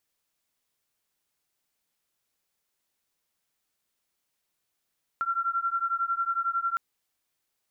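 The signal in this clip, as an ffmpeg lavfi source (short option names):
-f lavfi -i "aevalsrc='0.0376*(sin(2*PI*1360*t)+sin(2*PI*1371*t))':d=1.56:s=44100"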